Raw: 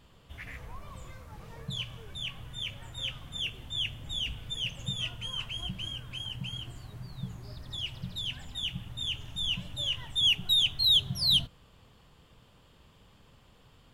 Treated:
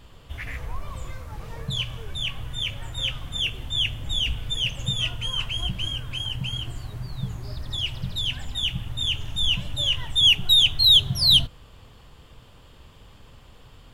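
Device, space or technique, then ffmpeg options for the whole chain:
low shelf boost with a cut just above: -af "lowshelf=frequency=68:gain=7,equalizer=frequency=180:width_type=o:width=0.54:gain=-4.5,volume=8dB"

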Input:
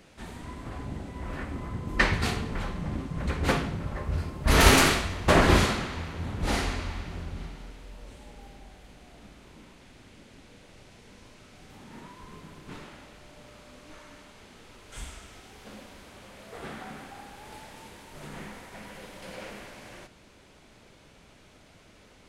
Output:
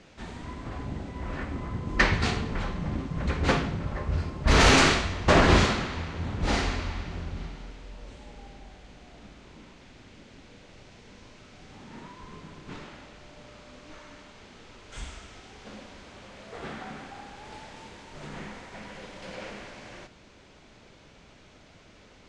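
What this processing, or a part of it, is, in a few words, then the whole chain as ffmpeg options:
synthesiser wavefolder: -af "aeval=exprs='0.237*(abs(mod(val(0)/0.237+3,4)-2)-1)':channel_layout=same,lowpass=frequency=7200:width=0.5412,lowpass=frequency=7200:width=1.3066,volume=1.5dB"

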